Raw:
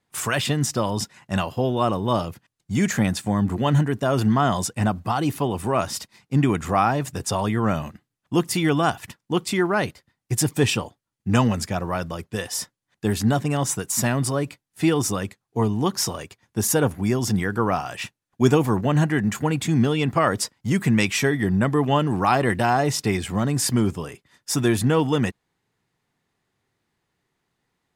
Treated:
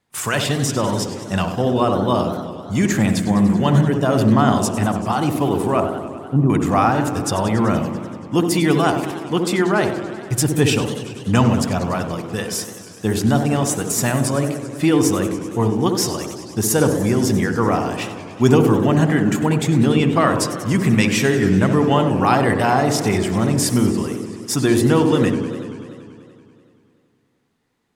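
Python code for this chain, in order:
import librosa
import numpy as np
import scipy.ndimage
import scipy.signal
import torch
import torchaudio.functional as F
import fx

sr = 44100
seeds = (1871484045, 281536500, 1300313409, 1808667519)

y = fx.steep_lowpass(x, sr, hz=1100.0, slope=36, at=(5.8, 6.5))
y = fx.echo_banded(y, sr, ms=65, feedback_pct=76, hz=310.0, wet_db=-3.0)
y = fx.echo_warbled(y, sr, ms=96, feedback_pct=78, rate_hz=2.8, cents=210, wet_db=-13.0)
y = y * librosa.db_to_amplitude(2.5)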